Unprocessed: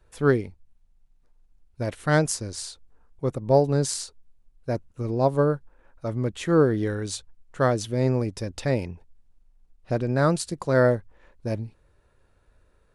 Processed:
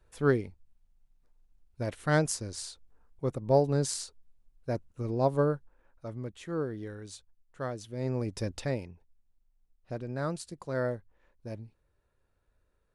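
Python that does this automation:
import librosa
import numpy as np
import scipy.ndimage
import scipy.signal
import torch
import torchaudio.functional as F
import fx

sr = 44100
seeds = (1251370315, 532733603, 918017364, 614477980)

y = fx.gain(x, sr, db=fx.line((5.44, -5.0), (6.47, -14.0), (7.87, -14.0), (8.46, -1.5), (8.88, -12.0)))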